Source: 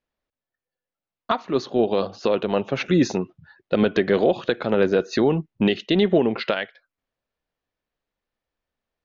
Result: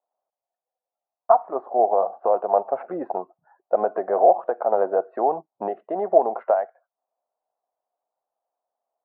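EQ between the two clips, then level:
high-pass with resonance 710 Hz, resonance Q 4.9
low-pass filter 1,100 Hz 24 dB per octave
high-frequency loss of the air 260 metres
0.0 dB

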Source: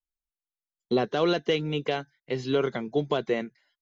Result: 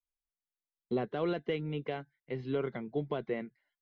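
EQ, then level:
high-frequency loss of the air 320 metres
low-shelf EQ 210 Hz +5 dB
parametric band 2,100 Hz +5 dB 0.24 octaves
−8.5 dB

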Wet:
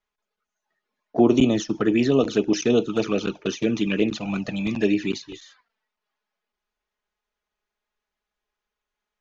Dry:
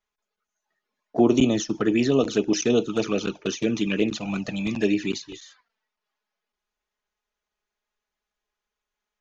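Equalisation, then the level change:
high-frequency loss of the air 70 metres
+1.5 dB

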